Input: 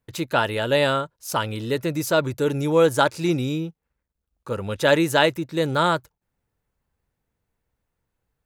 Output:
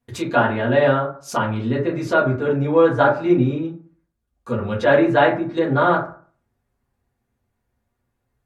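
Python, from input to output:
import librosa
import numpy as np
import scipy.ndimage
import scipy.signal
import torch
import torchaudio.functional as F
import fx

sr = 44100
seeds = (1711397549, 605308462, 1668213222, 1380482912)

y = fx.rev_fdn(x, sr, rt60_s=0.44, lf_ratio=1.1, hf_ratio=0.45, size_ms=25.0, drr_db=-5.5)
y = fx.env_lowpass_down(y, sr, base_hz=2100.0, full_db=-14.5)
y = F.gain(torch.from_numpy(y), -3.0).numpy()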